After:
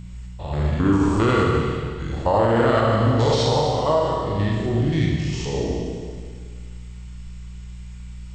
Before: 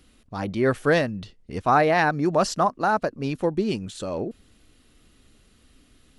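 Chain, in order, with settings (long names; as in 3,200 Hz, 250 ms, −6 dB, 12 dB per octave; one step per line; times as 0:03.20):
spectrum averaged block by block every 100 ms
bass and treble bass +5 dB, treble +3 dB
wrong playback speed 45 rpm record played at 33 rpm
parametric band 200 Hz −5.5 dB 1 octave
hum with harmonics 60 Hz, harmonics 3, −39 dBFS −3 dB per octave
four-comb reverb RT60 1.9 s, combs from 27 ms, DRR −2.5 dB
boost into a limiter +11 dB
level −8 dB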